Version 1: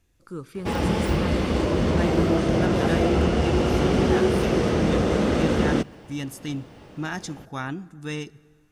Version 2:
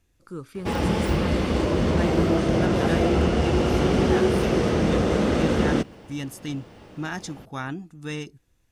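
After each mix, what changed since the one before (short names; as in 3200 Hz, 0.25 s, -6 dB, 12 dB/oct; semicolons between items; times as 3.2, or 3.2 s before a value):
reverb: off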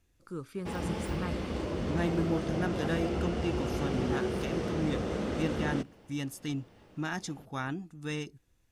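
speech -3.5 dB; background -11.5 dB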